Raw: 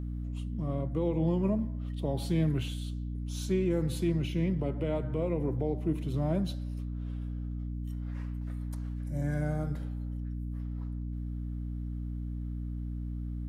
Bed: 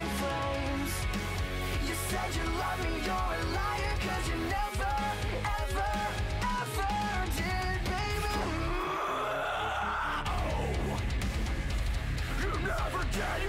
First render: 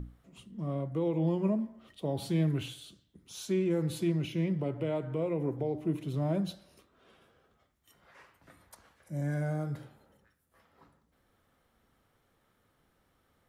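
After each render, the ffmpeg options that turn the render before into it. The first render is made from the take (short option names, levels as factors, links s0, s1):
-af "bandreject=f=60:t=h:w=6,bandreject=f=120:t=h:w=6,bandreject=f=180:t=h:w=6,bandreject=f=240:t=h:w=6,bandreject=f=300:t=h:w=6"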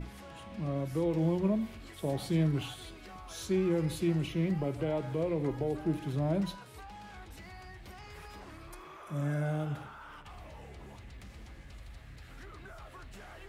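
-filter_complex "[1:a]volume=0.141[s0];[0:a][s0]amix=inputs=2:normalize=0"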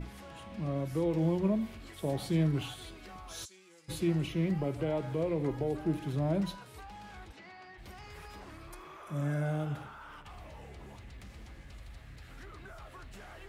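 -filter_complex "[0:a]asplit=3[s0][s1][s2];[s0]afade=t=out:st=3.44:d=0.02[s3];[s1]bandpass=f=7400:t=q:w=1.7,afade=t=in:st=3.44:d=0.02,afade=t=out:st=3.88:d=0.02[s4];[s2]afade=t=in:st=3.88:d=0.02[s5];[s3][s4][s5]amix=inputs=3:normalize=0,asplit=3[s6][s7][s8];[s6]afade=t=out:st=7.31:d=0.02[s9];[s7]highpass=240,lowpass=4500,afade=t=in:st=7.31:d=0.02,afade=t=out:st=7.77:d=0.02[s10];[s8]afade=t=in:st=7.77:d=0.02[s11];[s9][s10][s11]amix=inputs=3:normalize=0"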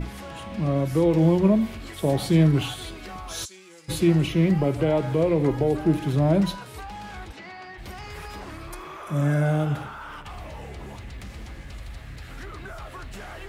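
-af "volume=3.35"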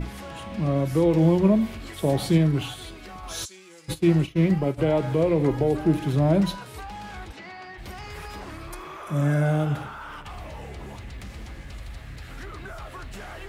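-filter_complex "[0:a]asplit=3[s0][s1][s2];[s0]afade=t=out:st=3.93:d=0.02[s3];[s1]agate=range=0.0224:threshold=0.1:ratio=3:release=100:detection=peak,afade=t=in:st=3.93:d=0.02,afade=t=out:st=4.77:d=0.02[s4];[s2]afade=t=in:st=4.77:d=0.02[s5];[s3][s4][s5]amix=inputs=3:normalize=0,asplit=3[s6][s7][s8];[s6]atrim=end=2.382[s9];[s7]atrim=start=2.378:end=3.232,asetpts=PTS-STARTPTS,volume=0.708[s10];[s8]atrim=start=3.228[s11];[s9][s10]acrossfade=d=0.004:c1=hsin:c2=hsin[s12];[s12][s11]acrossfade=d=0.004:c1=hsin:c2=hsin"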